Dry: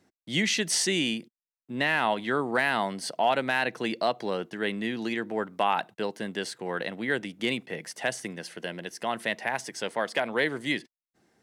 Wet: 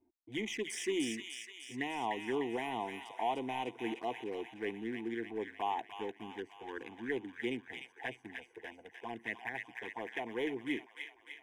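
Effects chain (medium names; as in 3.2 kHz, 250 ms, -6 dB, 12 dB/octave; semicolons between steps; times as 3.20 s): local Wiener filter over 25 samples; treble shelf 6.9 kHz -8.5 dB; band-stop 2.7 kHz, Q 9; in parallel at -6 dB: saturation -29 dBFS, distortion -7 dB; on the sum: touch-sensitive flanger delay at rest 3.3 ms, full sweep at -22.5 dBFS; static phaser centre 870 Hz, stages 8; on a send: feedback echo behind a high-pass 300 ms, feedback 59%, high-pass 1.5 kHz, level -3 dB; on the sum: trim -5 dB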